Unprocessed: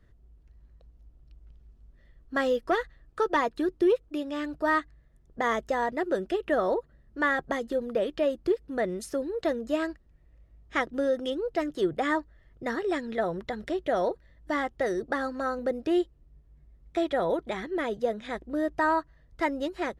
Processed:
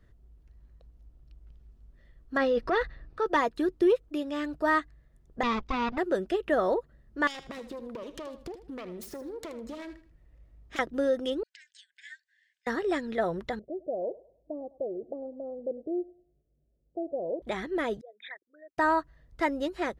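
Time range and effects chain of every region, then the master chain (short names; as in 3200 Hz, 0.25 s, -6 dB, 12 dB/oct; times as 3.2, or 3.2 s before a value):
2.37–3.26 polynomial smoothing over 15 samples + notch 3200 Hz, Q 8.6 + transient shaper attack -4 dB, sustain +9 dB
5.43–5.98 minimum comb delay 0.85 ms + LPF 5100 Hz 24 dB/oct
7.27–10.79 self-modulated delay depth 0.29 ms + compressor 12:1, threshold -36 dBFS + feedback echo 78 ms, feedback 29%, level -12 dB
11.43–12.67 high shelf 6200 Hz +6 dB + compressor 2.5:1, threshold -45 dBFS + brick-wall FIR band-pass 1500–8900 Hz
13.59–17.42 steep low-pass 640 Hz 48 dB/oct + tilt +4.5 dB/oct + thinning echo 0.102 s, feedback 45%, high-pass 460 Hz, level -17.5 dB
18.01–18.78 formant sharpening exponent 3 + Butterworth band-pass 2600 Hz, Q 0.8
whole clip: dry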